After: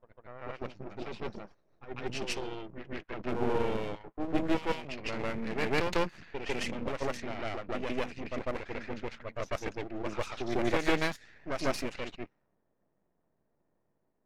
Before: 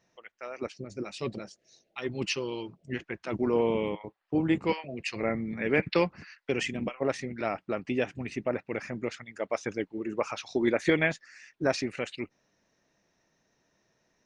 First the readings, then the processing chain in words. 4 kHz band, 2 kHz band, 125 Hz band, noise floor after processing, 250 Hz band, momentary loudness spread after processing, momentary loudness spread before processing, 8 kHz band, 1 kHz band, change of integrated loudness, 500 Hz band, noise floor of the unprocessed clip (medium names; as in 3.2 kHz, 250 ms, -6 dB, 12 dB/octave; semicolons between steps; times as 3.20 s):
-1.5 dB, -3.5 dB, -3.5 dB, -77 dBFS, -5.0 dB, 12 LU, 12 LU, -2.5 dB, 0.0 dB, -4.0 dB, -4.5 dB, -75 dBFS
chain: reverse echo 149 ms -4 dB; half-wave rectifier; level-controlled noise filter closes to 830 Hz, open at -27.5 dBFS